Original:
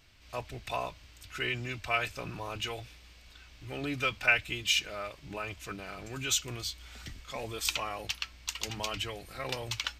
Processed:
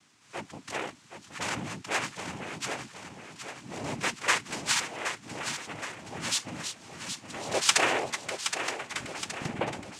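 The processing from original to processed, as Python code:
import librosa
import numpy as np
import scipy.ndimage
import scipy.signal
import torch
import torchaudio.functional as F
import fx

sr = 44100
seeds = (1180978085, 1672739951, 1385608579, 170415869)

y = fx.tape_stop_end(x, sr, length_s=2.24)
y = fx.spec_box(y, sr, start_s=7.46, length_s=0.65, low_hz=270.0, high_hz=4400.0, gain_db=11)
y = fx.noise_vocoder(y, sr, seeds[0], bands=4)
y = fx.echo_feedback(y, sr, ms=770, feedback_pct=52, wet_db=-8.5)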